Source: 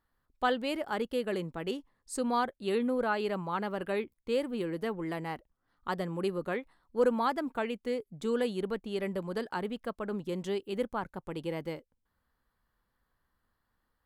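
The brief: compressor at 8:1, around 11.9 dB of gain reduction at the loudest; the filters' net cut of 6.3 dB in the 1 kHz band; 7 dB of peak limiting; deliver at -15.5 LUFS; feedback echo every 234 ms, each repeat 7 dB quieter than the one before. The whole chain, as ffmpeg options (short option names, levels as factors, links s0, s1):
-af "equalizer=f=1000:t=o:g=-8.5,acompressor=threshold=0.0178:ratio=8,alimiter=level_in=2.66:limit=0.0631:level=0:latency=1,volume=0.376,aecho=1:1:234|468|702|936|1170:0.447|0.201|0.0905|0.0407|0.0183,volume=21.1"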